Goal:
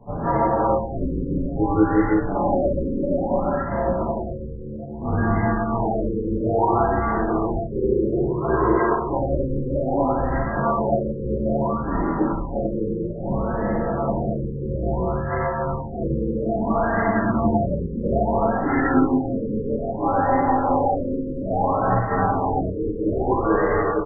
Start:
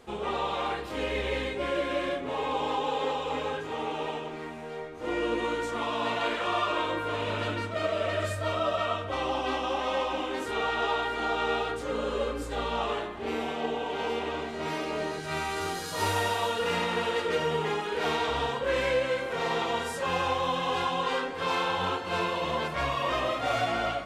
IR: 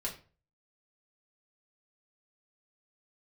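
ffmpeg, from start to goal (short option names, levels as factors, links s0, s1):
-filter_complex "[1:a]atrim=start_sample=2205,afade=t=out:st=0.14:d=0.01,atrim=end_sample=6615,asetrate=25137,aresample=44100[s0];[0:a][s0]afir=irnorm=-1:irlink=0,asplit=4[s1][s2][s3][s4];[s2]asetrate=35002,aresample=44100,atempo=1.25992,volume=0.178[s5];[s3]asetrate=52444,aresample=44100,atempo=0.840896,volume=0.355[s6];[s4]asetrate=58866,aresample=44100,atempo=0.749154,volume=0.158[s7];[s1][s5][s6][s7]amix=inputs=4:normalize=0,highpass=f=150:t=q:w=0.5412,highpass=f=150:t=q:w=1.307,lowpass=f=3200:t=q:w=0.5176,lowpass=f=3200:t=q:w=0.7071,lowpass=f=3200:t=q:w=1.932,afreqshift=-250,afftfilt=real='re*lt(b*sr/1024,520*pow(2100/520,0.5+0.5*sin(2*PI*0.6*pts/sr)))':imag='im*lt(b*sr/1024,520*pow(2100/520,0.5+0.5*sin(2*PI*0.6*pts/sr)))':win_size=1024:overlap=0.75,volume=1.5"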